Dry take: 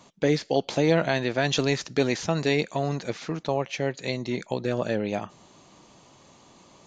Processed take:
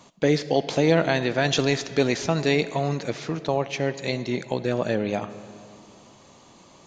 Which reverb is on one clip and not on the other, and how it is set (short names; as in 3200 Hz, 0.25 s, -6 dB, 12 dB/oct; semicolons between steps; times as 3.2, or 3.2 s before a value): digital reverb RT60 2.6 s, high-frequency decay 0.6×, pre-delay 25 ms, DRR 13.5 dB; gain +2 dB